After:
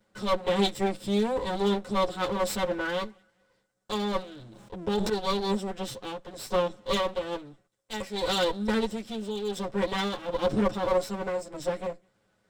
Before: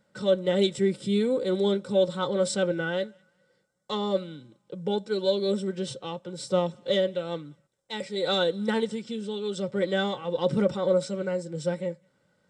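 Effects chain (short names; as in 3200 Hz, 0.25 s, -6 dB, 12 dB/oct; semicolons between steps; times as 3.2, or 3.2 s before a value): minimum comb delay 9.4 ms; 4.34–5.1 sustainer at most 26 dB/s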